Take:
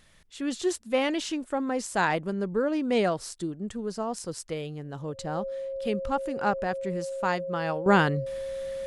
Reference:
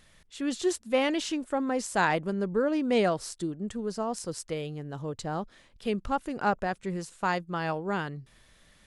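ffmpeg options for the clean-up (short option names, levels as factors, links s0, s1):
-af "bandreject=f=540:w=30,asetnsamples=n=441:p=0,asendcmd='7.86 volume volume -10.5dB',volume=1"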